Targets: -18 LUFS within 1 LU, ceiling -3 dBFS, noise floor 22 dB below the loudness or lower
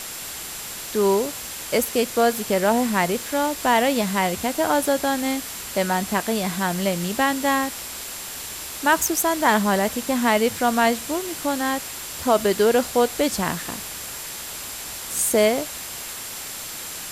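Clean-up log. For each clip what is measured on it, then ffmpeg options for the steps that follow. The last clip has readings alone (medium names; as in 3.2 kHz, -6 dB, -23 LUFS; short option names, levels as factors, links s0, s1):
steady tone 7.4 kHz; tone level -41 dBFS; noise floor -34 dBFS; noise floor target -45 dBFS; loudness -22.5 LUFS; peak level -5.5 dBFS; loudness target -18.0 LUFS
-> -af "bandreject=f=7400:w=30"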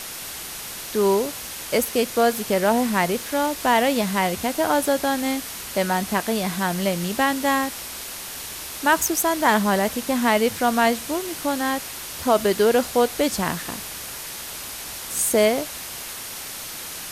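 steady tone not found; noise floor -34 dBFS; noise floor target -45 dBFS
-> -af "afftdn=nr=11:nf=-34"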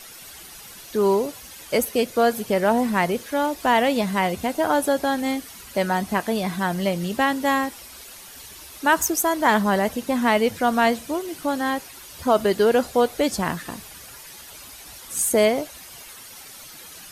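noise floor -42 dBFS; noise floor target -44 dBFS
-> -af "afftdn=nr=6:nf=-42"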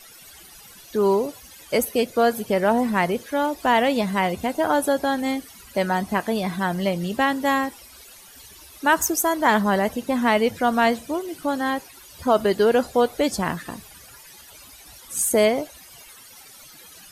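noise floor -46 dBFS; loudness -22.0 LUFS; peak level -5.5 dBFS; loudness target -18.0 LUFS
-> -af "volume=1.58,alimiter=limit=0.708:level=0:latency=1"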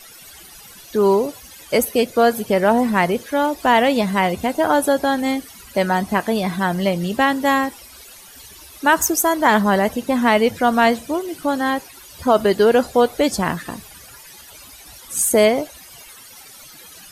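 loudness -18.5 LUFS; peak level -3.0 dBFS; noise floor -42 dBFS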